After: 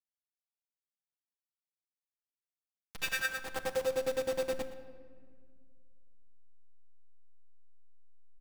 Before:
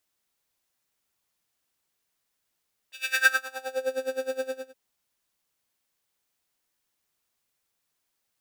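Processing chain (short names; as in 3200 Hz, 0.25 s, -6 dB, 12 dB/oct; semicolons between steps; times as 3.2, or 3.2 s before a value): level-crossing sampler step -30.5 dBFS; compressor 6:1, threshold -30 dBFS, peak gain reduction 15 dB; on a send: echo 0.119 s -16.5 dB; on the sum: shoebox room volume 2700 m³, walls mixed, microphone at 0.73 m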